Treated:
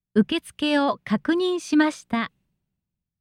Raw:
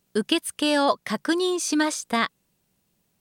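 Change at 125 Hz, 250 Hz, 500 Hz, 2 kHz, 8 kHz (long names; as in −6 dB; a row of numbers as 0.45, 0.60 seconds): can't be measured, +3.5 dB, 0.0 dB, −0.5 dB, −11.0 dB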